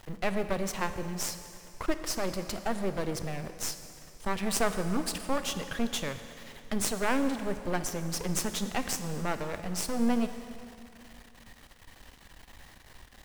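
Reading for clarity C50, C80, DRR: 9.5 dB, 10.5 dB, 9.0 dB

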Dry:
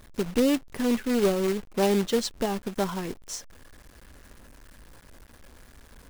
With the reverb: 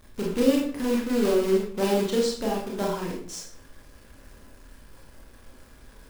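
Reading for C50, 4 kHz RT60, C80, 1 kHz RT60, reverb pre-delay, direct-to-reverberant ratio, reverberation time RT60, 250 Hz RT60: 3.0 dB, 0.45 s, 7.5 dB, 0.50 s, 25 ms, -3.0 dB, 0.55 s, 0.70 s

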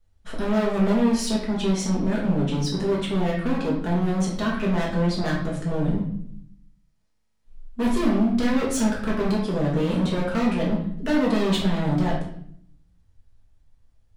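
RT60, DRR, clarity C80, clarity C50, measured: 0.65 s, -5.0 dB, 7.5 dB, 4.0 dB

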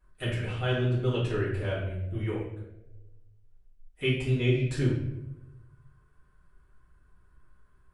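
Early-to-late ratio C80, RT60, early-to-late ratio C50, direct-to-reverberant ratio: 6.0 dB, not exponential, 2.5 dB, -9.5 dB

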